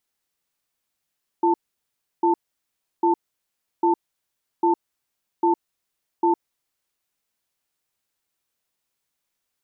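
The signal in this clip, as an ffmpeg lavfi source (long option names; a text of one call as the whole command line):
ffmpeg -f lavfi -i "aevalsrc='0.126*(sin(2*PI*342*t)+sin(2*PI*889*t))*clip(min(mod(t,0.8),0.11-mod(t,0.8))/0.005,0,1)':duration=5.29:sample_rate=44100" out.wav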